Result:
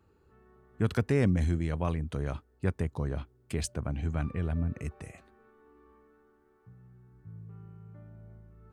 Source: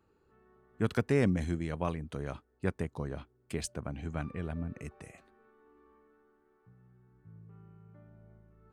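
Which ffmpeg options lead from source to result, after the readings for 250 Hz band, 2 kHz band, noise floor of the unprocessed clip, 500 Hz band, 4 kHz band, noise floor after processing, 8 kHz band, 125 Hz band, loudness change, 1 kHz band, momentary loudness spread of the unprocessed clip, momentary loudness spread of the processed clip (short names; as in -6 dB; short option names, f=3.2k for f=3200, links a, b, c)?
+2.0 dB, +0.5 dB, -71 dBFS, +0.5 dB, +2.0 dB, -66 dBFS, +2.0 dB, +5.5 dB, +3.0 dB, +0.5 dB, 20 LU, 22 LU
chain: -filter_complex "[0:a]equalizer=f=76:t=o:w=1.6:g=7.5,asplit=2[a][b];[b]alimiter=level_in=0.5dB:limit=-24dB:level=0:latency=1:release=22,volume=-0.5dB,volume=-1dB[c];[a][c]amix=inputs=2:normalize=0,volume=-3dB"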